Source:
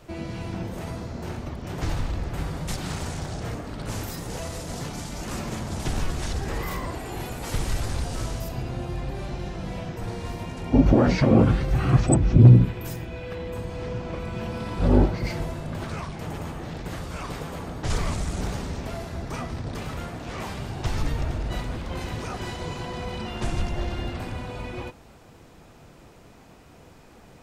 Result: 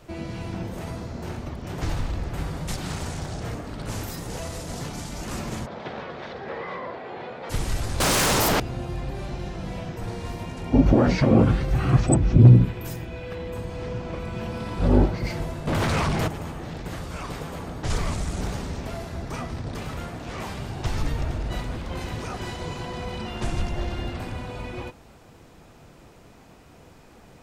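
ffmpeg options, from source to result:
ffmpeg -i in.wav -filter_complex "[0:a]asplit=3[link_01][link_02][link_03];[link_01]afade=type=out:start_time=5.65:duration=0.02[link_04];[link_02]highpass=260,equalizer=frequency=300:width_type=q:width=4:gain=-8,equalizer=frequency=520:width_type=q:width=4:gain=6,equalizer=frequency=2800:width_type=q:width=4:gain=-6,lowpass=frequency=3400:width=0.5412,lowpass=frequency=3400:width=1.3066,afade=type=in:start_time=5.65:duration=0.02,afade=type=out:start_time=7.49:duration=0.02[link_05];[link_03]afade=type=in:start_time=7.49:duration=0.02[link_06];[link_04][link_05][link_06]amix=inputs=3:normalize=0,asettb=1/sr,asplit=3[link_07][link_08][link_09];[link_07]atrim=end=8.004[link_10];[link_08]atrim=start=8:end=8.6,asetpts=PTS-STARTPTS,afade=type=in:duration=0.004:curve=qsin,afade=type=out:start_time=0.596:duration=0.004:curve=qsin,aeval=exprs='0.133*sin(PI/2*7.94*val(0)/0.133)':channel_layout=same[link_11];[link_09]atrim=start=8.596[link_12];[link_10][link_11]acrossfade=duration=0.004:curve1=hsin:curve2=qsin[link_13];[link_13][link_12]acrossfade=duration=0.004:curve1=qsin:curve2=hsin,asettb=1/sr,asplit=3[link_14][link_15][link_16];[link_14]atrim=end=15.674[link_17];[link_15]atrim=start=15.67:end=16.28,asetpts=PTS-STARTPTS,afade=type=in:duration=0.004:curve=qsin,afade=type=out:start_time=0.606:duration=0.004:curve=qsin,aeval=exprs='0.106*sin(PI/2*3.16*val(0)/0.106)':channel_layout=same[link_18];[link_16]atrim=start=16.276[link_19];[link_17][link_18]acrossfade=duration=0.004:curve1=hsin:curve2=qsin[link_20];[link_20][link_19]acrossfade=duration=0.004:curve1=qsin:curve2=hsin" out.wav

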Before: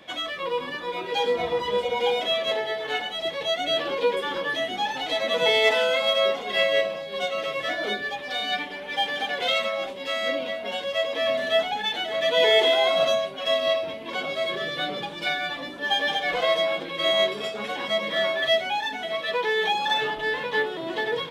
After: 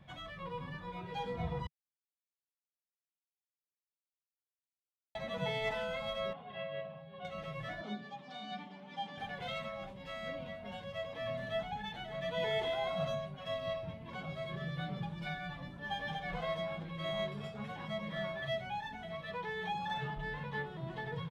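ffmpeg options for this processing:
ffmpeg -i in.wav -filter_complex "[0:a]asettb=1/sr,asplit=3[link_01][link_02][link_03];[link_01]atrim=end=6.334[link_04];[link_02]atrim=start=6.33:end=7.25,asetpts=PTS-STARTPTS,afade=type=in:duration=0.004:curve=qsin,afade=type=out:start_time=0.916:duration=0.004:curve=qsin,highpass=160,equalizer=frequency=200:width_type=q:width=4:gain=-8,equalizer=frequency=350:width_type=q:width=4:gain=-10,equalizer=frequency=500:width_type=q:width=4:gain=-4,equalizer=frequency=940:width_type=q:width=4:gain=-3,equalizer=frequency=1400:width_type=q:width=4:gain=-5,equalizer=frequency=2100:width_type=q:width=4:gain=-10,lowpass=frequency=3000:width=0.5412,lowpass=frequency=3000:width=1.3066[link_05];[link_03]atrim=start=7.246[link_06];[link_04][link_05]acrossfade=duration=0.004:curve1=hsin:curve2=qsin[link_07];[link_07][link_06]acrossfade=duration=0.004:curve1=qsin:curve2=hsin,asettb=1/sr,asplit=3[link_08][link_09][link_10];[link_08]atrim=end=7.814[link_11];[link_09]atrim=start=7.81:end=9.18,asetpts=PTS-STARTPTS,afade=type=in:duration=0.004:curve=qsin,afade=type=out:start_time=1.366:duration=0.004:curve=qsin,highpass=frequency=190:width=0.5412,highpass=frequency=190:width=1.3066,equalizer=frequency=230:width_type=q:width=4:gain=7,equalizer=frequency=480:width_type=q:width=4:gain=-6,equalizer=frequency=1700:width_type=q:width=4:gain=-9,equalizer=frequency=2400:width_type=q:width=4:gain=-4,lowpass=frequency=7700:width=0.5412,lowpass=frequency=7700:width=1.3066[link_12];[link_10]atrim=start=9.176[link_13];[link_11][link_12]acrossfade=duration=0.004:curve1=hsin:curve2=qsin[link_14];[link_14][link_13]acrossfade=duration=0.004:curve1=qsin:curve2=hsin,asplit=3[link_15][link_16][link_17];[link_15]atrim=end=1.67,asetpts=PTS-STARTPTS,afade=type=out:start_time=1.666:duration=0.004:curve=hsin[link_18];[link_16]atrim=start=1.67:end=5.15,asetpts=PTS-STARTPTS,volume=0[link_19];[link_17]atrim=start=5.15,asetpts=PTS-STARTPTS,afade=type=in:duration=0.004:curve=hsin[link_20];[link_18][link_19][link_20]concat=n=3:v=0:a=1,firequalizer=gain_entry='entry(150,0);entry(270,-24);entry(480,-26);entry(800,-20);entry(3100,-28)':delay=0.05:min_phase=1,volume=8dB" out.wav

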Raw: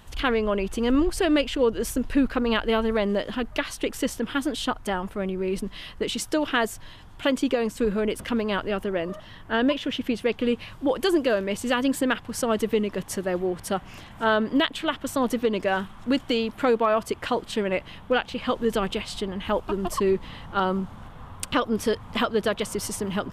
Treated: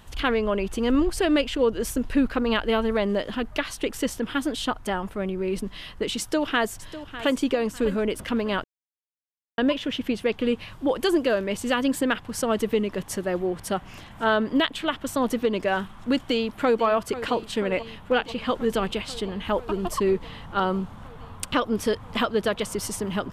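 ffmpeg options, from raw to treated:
ffmpeg -i in.wav -filter_complex "[0:a]asplit=2[link_01][link_02];[link_02]afade=type=in:start_time=6.19:duration=0.01,afade=type=out:start_time=7.35:duration=0.01,aecho=0:1:600|1200|1800:0.199526|0.0598579|0.0179574[link_03];[link_01][link_03]amix=inputs=2:normalize=0,asplit=2[link_04][link_05];[link_05]afade=type=in:start_time=16.21:duration=0.01,afade=type=out:start_time=16.84:duration=0.01,aecho=0:1:490|980|1470|1960|2450|2940|3430|3920|4410|4900|5390|5880:0.211349|0.169079|0.135263|0.108211|0.0865685|0.0692548|0.0554038|0.0443231|0.0354585|0.0283668|0.0226934|0.0181547[link_06];[link_04][link_06]amix=inputs=2:normalize=0,asplit=3[link_07][link_08][link_09];[link_07]atrim=end=8.64,asetpts=PTS-STARTPTS,afade=type=out:start_time=8.636:duration=0.004:curve=hsin[link_10];[link_08]atrim=start=8.64:end=9.58,asetpts=PTS-STARTPTS,volume=0[link_11];[link_09]atrim=start=9.58,asetpts=PTS-STARTPTS,afade=type=in:duration=0.004:curve=hsin[link_12];[link_10][link_11][link_12]concat=n=3:v=0:a=1" out.wav

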